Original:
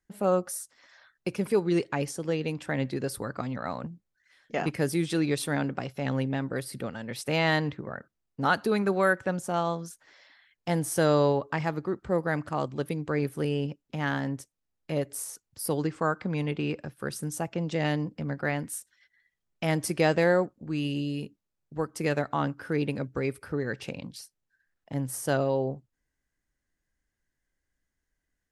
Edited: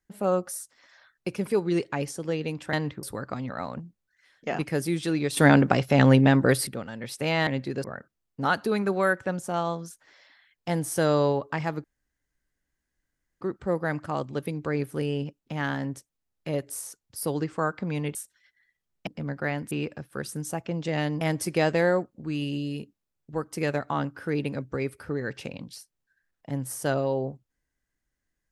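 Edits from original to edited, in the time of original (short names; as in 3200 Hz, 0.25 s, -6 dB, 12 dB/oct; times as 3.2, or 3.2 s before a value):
2.73–3.1 swap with 7.54–7.84
5.44–6.74 gain +11.5 dB
11.84 insert room tone 1.57 s
16.58–18.08 swap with 18.72–19.64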